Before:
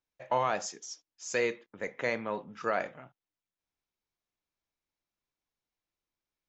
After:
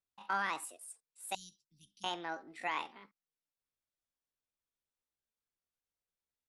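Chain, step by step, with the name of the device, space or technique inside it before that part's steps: 1.37–2.07 elliptic band-stop 110–3400 Hz, stop band 70 dB; chipmunk voice (pitch shift +7.5 st); gain -6 dB

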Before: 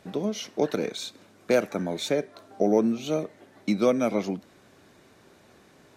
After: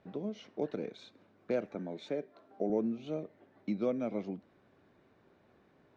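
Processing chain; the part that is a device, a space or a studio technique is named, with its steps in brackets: 1.75–2.7 HPF 160 Hz 12 dB/oct; phone in a pocket (LPF 3900 Hz 12 dB/oct; high shelf 2400 Hz -9 dB); dynamic EQ 1200 Hz, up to -5 dB, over -41 dBFS, Q 0.95; gain -9 dB

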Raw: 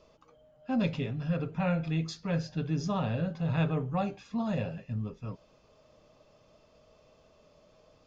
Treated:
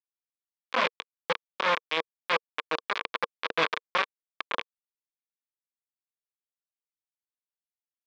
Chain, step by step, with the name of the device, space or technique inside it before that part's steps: hand-held game console (bit-crush 4-bit; speaker cabinet 440–4600 Hz, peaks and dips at 470 Hz +6 dB, 760 Hz -3 dB, 1100 Hz +10 dB, 1600 Hz +5 dB, 2300 Hz +7 dB, 3400 Hz +5 dB)

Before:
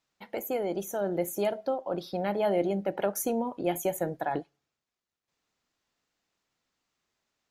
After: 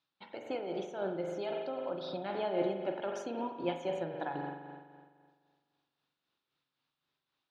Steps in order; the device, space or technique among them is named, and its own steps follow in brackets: combo amplifier with spring reverb and tremolo (spring tank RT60 1.8 s, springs 42 ms, chirp 70 ms, DRR 2.5 dB; tremolo 3.8 Hz, depth 44%; speaker cabinet 84–4600 Hz, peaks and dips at 89 Hz -7 dB, 210 Hz -8 dB, 450 Hz -6 dB, 680 Hz -6 dB, 2000 Hz -6 dB, 3700 Hz +5 dB); gain -2 dB

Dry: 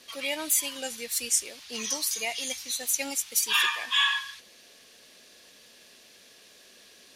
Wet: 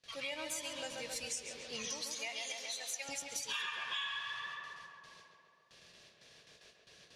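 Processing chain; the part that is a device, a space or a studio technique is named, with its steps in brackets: gate with hold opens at -43 dBFS; 2.03–3.09 HPF 660 Hz 12 dB/oct; tape echo 0.136 s, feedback 78%, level -4 dB, low-pass 2600 Hz; jukebox (LPF 6500 Hz 12 dB/oct; resonant low shelf 190 Hz +6.5 dB, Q 3; compressor 4:1, threshold -33 dBFS, peak gain reduction 11.5 dB); gain -5 dB

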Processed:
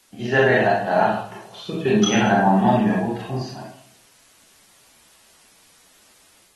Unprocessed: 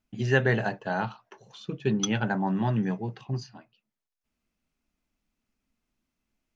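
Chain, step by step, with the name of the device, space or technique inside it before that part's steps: filmed off a television (BPF 170–6100 Hz; bell 690 Hz +9 dB 0.32 oct; reverb RT60 0.60 s, pre-delay 24 ms, DRR -4.5 dB; white noise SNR 32 dB; AGC gain up to 4 dB; AAC 32 kbps 48000 Hz)

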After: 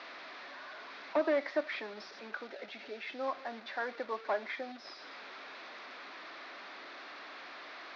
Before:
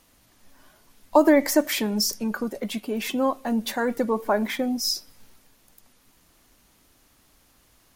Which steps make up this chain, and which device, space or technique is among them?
HPF 130 Hz 6 dB/oct; digital answering machine (BPF 320–3000 Hz; delta modulation 32 kbps, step -33 dBFS; speaker cabinet 460–4100 Hz, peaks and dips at 480 Hz -6 dB, 880 Hz -6 dB, 3000 Hz -8 dB); 2.33–3.28 notch 1100 Hz, Q 5.2; gain -5.5 dB

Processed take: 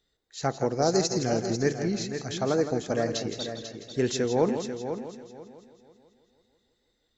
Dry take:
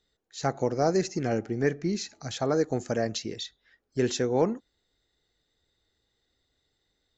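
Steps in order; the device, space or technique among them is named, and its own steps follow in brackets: multi-head tape echo (multi-head echo 0.164 s, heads first and third, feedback 40%, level -9.5 dB; wow and flutter 21 cents); 0.82–1.84 resonant high shelf 3300 Hz +6.5 dB, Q 1.5

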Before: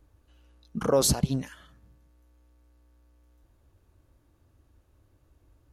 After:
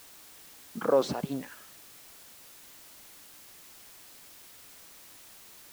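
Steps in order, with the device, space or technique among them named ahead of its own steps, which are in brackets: wax cylinder (BPF 280–2400 Hz; wow and flutter; white noise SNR 15 dB)

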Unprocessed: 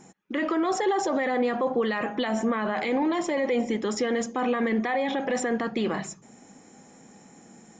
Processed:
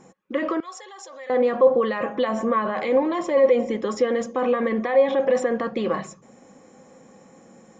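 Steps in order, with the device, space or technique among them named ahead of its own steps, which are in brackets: inside a helmet (high shelf 5400 Hz -7.5 dB; small resonant body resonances 530/1100 Hz, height 14 dB, ringing for 65 ms); 0.6–1.3 differentiator

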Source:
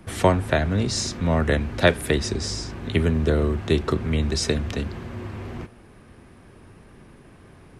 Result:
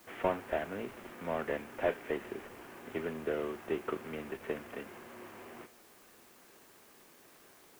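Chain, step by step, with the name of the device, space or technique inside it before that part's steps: army field radio (BPF 390–3000 Hz; CVSD 16 kbps; white noise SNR 23 dB); gain -8 dB

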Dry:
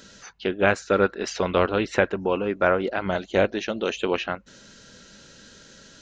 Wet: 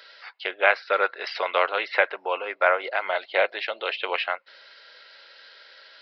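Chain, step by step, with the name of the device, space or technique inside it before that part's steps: musical greeting card (downsampling 11025 Hz; HPF 590 Hz 24 dB/oct; bell 2100 Hz +8.5 dB 0.22 oct); gain +2 dB

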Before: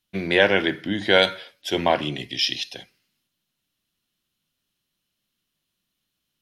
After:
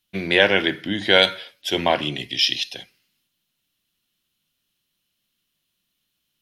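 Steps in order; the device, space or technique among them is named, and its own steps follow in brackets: presence and air boost (bell 3000 Hz +4 dB 1.2 oct; high shelf 9900 Hz +6.5 dB)

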